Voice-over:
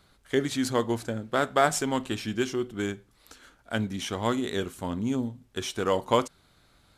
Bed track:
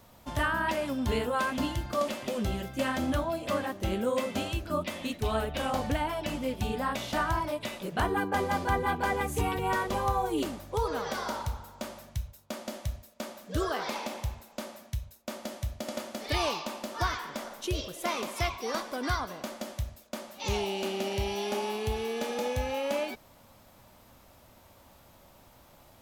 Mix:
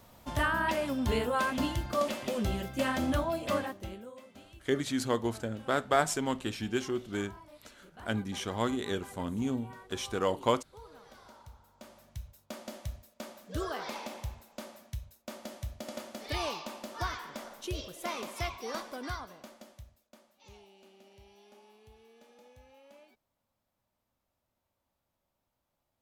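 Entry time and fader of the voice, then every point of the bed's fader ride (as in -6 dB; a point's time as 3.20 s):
4.35 s, -4.0 dB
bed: 3.58 s -0.5 dB
4.17 s -21.5 dB
11.27 s -21.5 dB
12.39 s -5 dB
18.85 s -5 dB
20.69 s -26.5 dB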